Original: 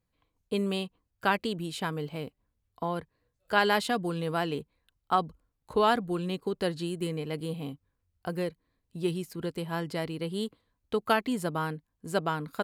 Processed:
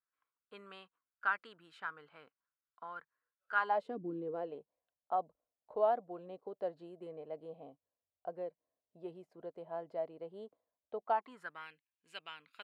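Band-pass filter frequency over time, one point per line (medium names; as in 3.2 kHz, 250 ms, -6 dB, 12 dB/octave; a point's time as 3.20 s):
band-pass filter, Q 5
3.56 s 1.4 kHz
4.03 s 260 Hz
4.54 s 640 Hz
11.02 s 640 Hz
11.70 s 2.6 kHz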